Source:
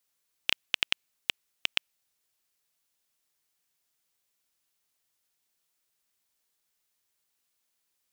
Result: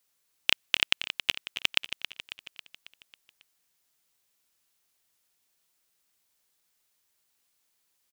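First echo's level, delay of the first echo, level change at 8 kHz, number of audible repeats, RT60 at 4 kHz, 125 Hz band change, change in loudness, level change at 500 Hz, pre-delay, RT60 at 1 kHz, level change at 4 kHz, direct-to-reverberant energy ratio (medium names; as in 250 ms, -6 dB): -10.5 dB, 273 ms, +4.0 dB, 5, no reverb, +4.0 dB, +3.5 dB, +4.0 dB, no reverb, no reverb, +4.0 dB, no reverb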